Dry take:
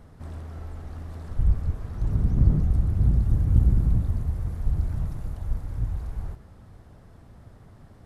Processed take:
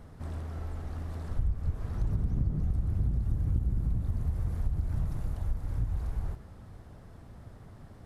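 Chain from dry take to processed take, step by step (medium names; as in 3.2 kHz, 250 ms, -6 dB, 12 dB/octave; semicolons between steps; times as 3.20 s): compression 6:1, threshold -25 dBFS, peak gain reduction 13 dB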